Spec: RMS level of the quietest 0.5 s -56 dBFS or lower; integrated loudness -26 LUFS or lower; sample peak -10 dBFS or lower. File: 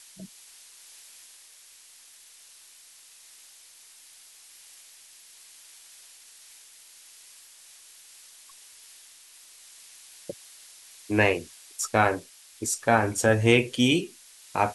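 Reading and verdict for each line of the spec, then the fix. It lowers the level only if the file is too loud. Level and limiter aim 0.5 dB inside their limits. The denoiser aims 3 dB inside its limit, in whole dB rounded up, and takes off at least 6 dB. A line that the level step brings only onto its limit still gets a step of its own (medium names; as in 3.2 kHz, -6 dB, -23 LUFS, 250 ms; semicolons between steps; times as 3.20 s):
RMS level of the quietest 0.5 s -52 dBFS: fail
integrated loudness -24.0 LUFS: fail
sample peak -4.5 dBFS: fail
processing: noise reduction 6 dB, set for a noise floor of -52 dBFS; trim -2.5 dB; peak limiter -10.5 dBFS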